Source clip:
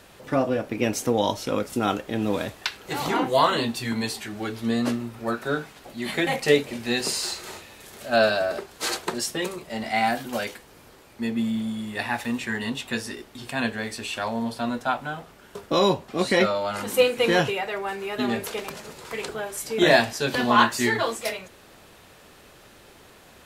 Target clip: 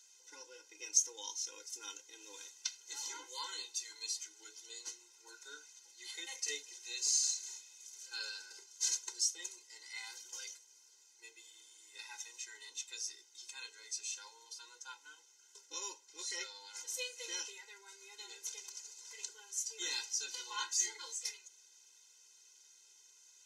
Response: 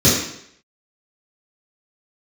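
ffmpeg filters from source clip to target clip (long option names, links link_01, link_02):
-af "bandpass=frequency=6200:width_type=q:width=7.2:csg=0,afftfilt=real='re*eq(mod(floor(b*sr/1024/270),2),1)':imag='im*eq(mod(floor(b*sr/1024/270),2),1)':win_size=1024:overlap=0.75,volume=8.5dB"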